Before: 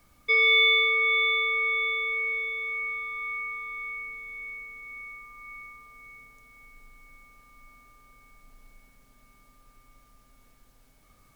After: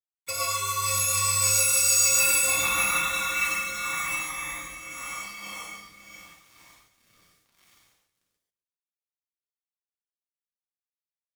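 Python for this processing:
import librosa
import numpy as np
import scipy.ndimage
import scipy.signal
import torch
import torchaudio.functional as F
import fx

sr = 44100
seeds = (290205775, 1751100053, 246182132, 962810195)

y = fx.wiener(x, sr, points=9)
y = fx.highpass(y, sr, hz=1400.0, slope=6)
y = fx.high_shelf(y, sr, hz=4500.0, db=11.0)
y = fx.leveller(y, sr, passes=1)
y = fx.over_compress(y, sr, threshold_db=-26.0, ratio=-1.0)
y = fx.pitch_keep_formants(y, sr, semitones=3.0)
y = np.where(np.abs(y) >= 10.0 ** (-51.5 / 20.0), y, 0.0)
y = fx.rotary_switch(y, sr, hz=6.7, then_hz=0.85, switch_at_s=2.79)
y = y + 10.0 ** (-19.5 / 20.0) * np.pad(y, (int(255 * sr / 1000.0), 0))[:len(y)]
y = fx.rev_gated(y, sr, seeds[0], gate_ms=170, shape='flat', drr_db=-4.5)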